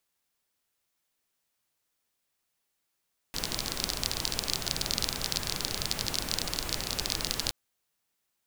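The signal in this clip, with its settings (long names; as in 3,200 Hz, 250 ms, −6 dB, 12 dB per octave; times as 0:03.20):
rain-like ticks over hiss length 4.17 s, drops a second 27, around 4,500 Hz, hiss −1.5 dB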